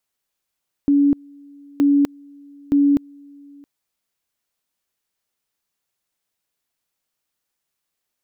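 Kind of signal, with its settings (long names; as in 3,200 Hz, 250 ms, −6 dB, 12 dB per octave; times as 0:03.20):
tone at two levels in turn 284 Hz −11.5 dBFS, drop 29 dB, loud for 0.25 s, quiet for 0.67 s, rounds 3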